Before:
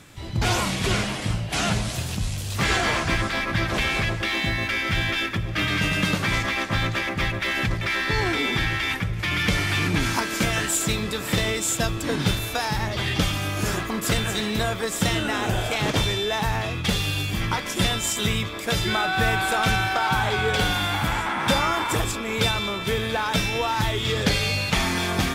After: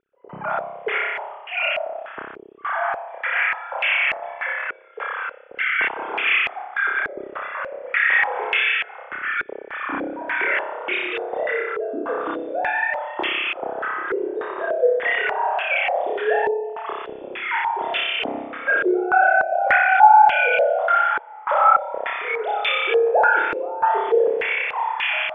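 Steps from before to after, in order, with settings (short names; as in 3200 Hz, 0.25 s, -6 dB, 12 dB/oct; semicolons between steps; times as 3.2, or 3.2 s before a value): sine-wave speech; flutter echo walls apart 5.2 m, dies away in 1.1 s; stepped low-pass 3.4 Hz 410–2600 Hz; gain -7 dB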